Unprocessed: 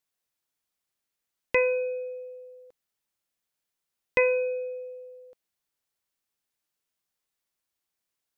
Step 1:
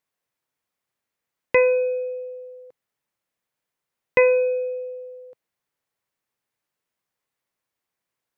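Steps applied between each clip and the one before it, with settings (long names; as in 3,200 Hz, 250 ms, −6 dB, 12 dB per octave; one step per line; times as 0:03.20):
graphic EQ with 10 bands 125 Hz +9 dB, 250 Hz +4 dB, 500 Hz +7 dB, 1,000 Hz +6 dB, 2,000 Hz +6 dB
level −2.5 dB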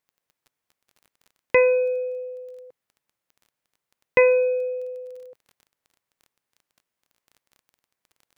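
surface crackle 18 per second −41 dBFS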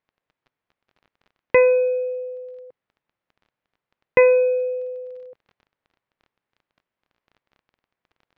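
high-frequency loss of the air 290 metres
level +3.5 dB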